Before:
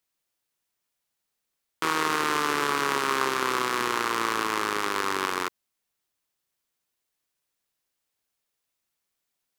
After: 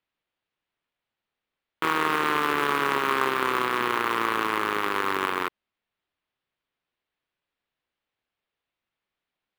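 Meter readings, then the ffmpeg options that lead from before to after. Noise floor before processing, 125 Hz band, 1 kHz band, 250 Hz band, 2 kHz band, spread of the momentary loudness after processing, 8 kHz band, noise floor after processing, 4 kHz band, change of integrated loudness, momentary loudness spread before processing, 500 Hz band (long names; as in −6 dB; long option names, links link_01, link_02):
−82 dBFS, +1.5 dB, +1.5 dB, +1.5 dB, +1.5 dB, 3 LU, −7.5 dB, below −85 dBFS, −1.5 dB, +1.0 dB, 3 LU, +1.5 dB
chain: -af "lowpass=frequency=3500:width=0.5412,lowpass=frequency=3500:width=1.3066,acrusher=bits=4:mode=log:mix=0:aa=0.000001,volume=1.5dB"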